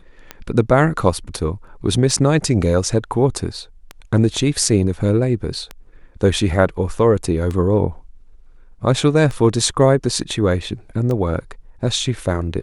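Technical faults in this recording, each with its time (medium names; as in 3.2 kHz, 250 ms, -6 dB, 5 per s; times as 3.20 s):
tick 33 1/3 rpm -13 dBFS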